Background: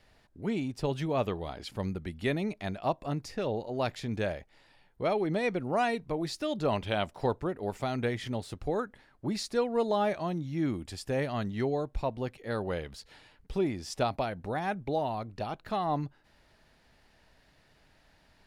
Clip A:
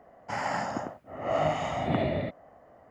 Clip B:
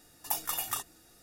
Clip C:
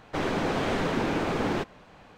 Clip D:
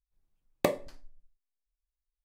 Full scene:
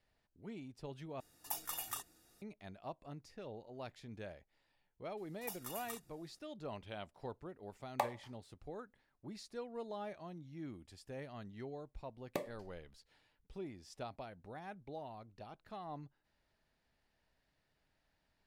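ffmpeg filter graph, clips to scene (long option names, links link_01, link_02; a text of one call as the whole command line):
ffmpeg -i bed.wav -i cue0.wav -i cue1.wav -i cue2.wav -i cue3.wav -filter_complex "[2:a]asplit=2[link_01][link_02];[4:a]asplit=2[link_03][link_04];[0:a]volume=-16.5dB[link_05];[link_03]highpass=frequency=850:width_type=q:width=5.7[link_06];[link_05]asplit=2[link_07][link_08];[link_07]atrim=end=1.204[link_09];[link_01]atrim=end=1.22,asetpts=PTS-STARTPTS,volume=-9dB[link_10];[link_08]atrim=start=2.416[link_11];[link_02]atrim=end=1.22,asetpts=PTS-STARTPTS,volume=-14.5dB,afade=type=in:duration=0.004:curve=hsin,afade=type=out:start_time=1.216:duration=0.004:curve=hsin,adelay=227997S[link_12];[link_06]atrim=end=2.24,asetpts=PTS-STARTPTS,volume=-10.5dB,afade=type=in:duration=0.004:curve=hsin,afade=type=out:start_time=2.236:duration=0.004:curve=hsin,adelay=7350[link_13];[link_04]atrim=end=2.24,asetpts=PTS-STARTPTS,volume=-13dB,afade=type=in:duration=0.004:curve=hsin,afade=type=out:start_time=2.236:duration=0.004:curve=hsin,adelay=11710[link_14];[link_09][link_10]acrossfade=duration=0.004:curve1=hsin:curve2=hsin[link_15];[link_15][link_11]acrossfade=duration=0.004:curve1=hsin:curve2=hsin[link_16];[link_16][link_12][link_13][link_14]amix=inputs=4:normalize=0" out.wav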